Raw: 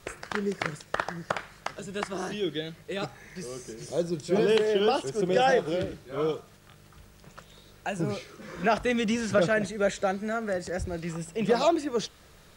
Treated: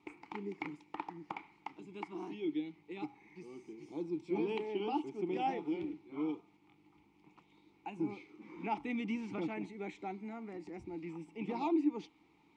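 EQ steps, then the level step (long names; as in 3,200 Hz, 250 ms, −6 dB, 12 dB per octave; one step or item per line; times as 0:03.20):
formant filter u
+3.0 dB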